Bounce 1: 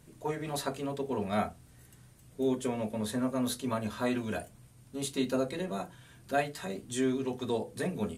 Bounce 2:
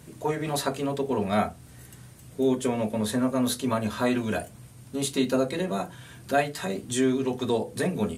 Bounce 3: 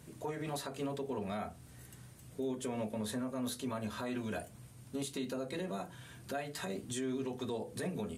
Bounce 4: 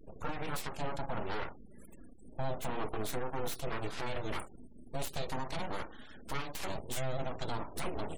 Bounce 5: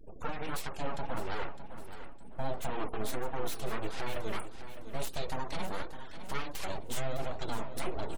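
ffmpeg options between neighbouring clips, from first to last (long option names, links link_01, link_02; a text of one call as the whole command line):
ffmpeg -i in.wav -filter_complex "[0:a]highpass=56,asplit=2[link_01][link_02];[link_02]acompressor=threshold=-40dB:ratio=6,volume=-2dB[link_03];[link_01][link_03]amix=inputs=2:normalize=0,volume=4.5dB" out.wav
ffmpeg -i in.wav -af "alimiter=limit=-22.5dB:level=0:latency=1:release=161,volume=-6.5dB" out.wav
ffmpeg -i in.wav -af "aeval=exprs='abs(val(0))':channel_layout=same,afftfilt=real='re*gte(hypot(re,im),0.00178)':imag='im*gte(hypot(re,im),0.00178)':win_size=1024:overlap=0.75,volume=4.5dB" out.wav
ffmpeg -i in.wav -af "flanger=delay=1.2:depth=4.1:regen=53:speed=1.5:shape=triangular,aecho=1:1:608|1216|1824|2432:0.266|0.0905|0.0308|0.0105,volume=4.5dB" out.wav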